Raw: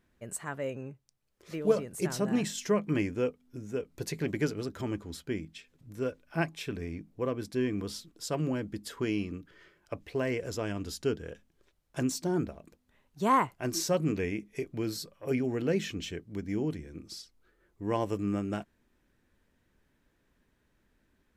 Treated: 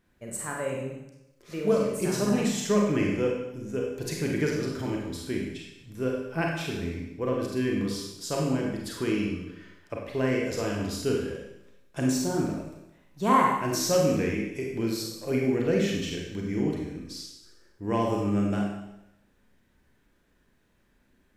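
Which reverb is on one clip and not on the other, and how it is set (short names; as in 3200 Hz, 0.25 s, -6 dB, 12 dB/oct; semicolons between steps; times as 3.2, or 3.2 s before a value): Schroeder reverb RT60 0.88 s, combs from 31 ms, DRR -1.5 dB; gain +1 dB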